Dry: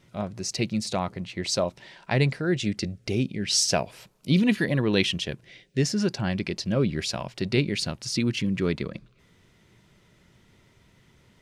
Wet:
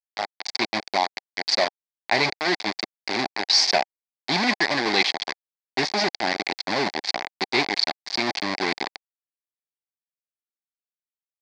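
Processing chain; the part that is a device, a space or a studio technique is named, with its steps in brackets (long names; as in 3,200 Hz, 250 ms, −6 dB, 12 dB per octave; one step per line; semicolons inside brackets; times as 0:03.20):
hand-held game console (bit reduction 4 bits; loudspeaker in its box 430–4,900 Hz, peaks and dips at 500 Hz −9 dB, 780 Hz +6 dB, 1,300 Hz −9 dB, 2,100 Hz +6 dB, 2,900 Hz −8 dB, 4,600 Hz +9 dB)
level +4.5 dB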